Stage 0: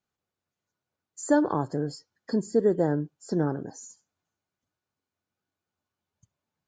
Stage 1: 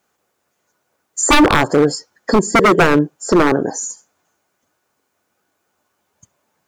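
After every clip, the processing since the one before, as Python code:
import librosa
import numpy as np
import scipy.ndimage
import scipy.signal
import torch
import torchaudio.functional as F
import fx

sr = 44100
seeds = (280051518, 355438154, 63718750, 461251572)

y = fx.curve_eq(x, sr, hz=(110.0, 230.0, 500.0, 1800.0, 4100.0, 7200.0), db=(0, 7, 13, 12, 7, 13))
y = 10.0 ** (-12.5 / 20.0) * (np.abs((y / 10.0 ** (-12.5 / 20.0) + 3.0) % 4.0 - 2.0) - 1.0)
y = F.gain(torch.from_numpy(y), 8.0).numpy()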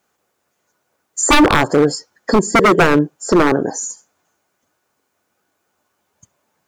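y = x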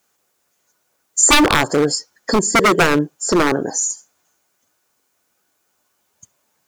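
y = fx.high_shelf(x, sr, hz=2800.0, db=10.0)
y = F.gain(torch.from_numpy(y), -3.5).numpy()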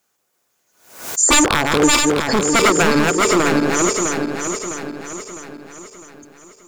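y = fx.reverse_delay_fb(x, sr, ms=328, feedback_pct=67, wet_db=-2.0)
y = fx.pre_swell(y, sr, db_per_s=99.0)
y = F.gain(torch.from_numpy(y), -2.5).numpy()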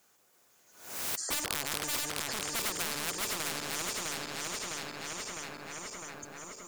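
y = fx.spectral_comp(x, sr, ratio=4.0)
y = F.gain(torch.from_numpy(y), -8.0).numpy()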